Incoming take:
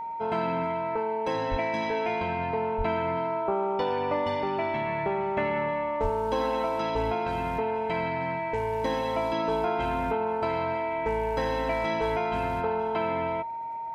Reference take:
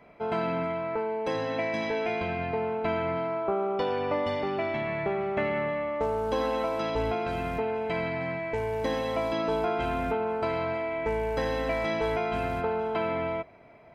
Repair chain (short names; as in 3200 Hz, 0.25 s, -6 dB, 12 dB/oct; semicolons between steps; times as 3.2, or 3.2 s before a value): de-click; notch 920 Hz, Q 30; 1.5–1.62 HPF 140 Hz 24 dB/oct; 2.77–2.89 HPF 140 Hz 24 dB/oct; 6.02–6.14 HPF 140 Hz 24 dB/oct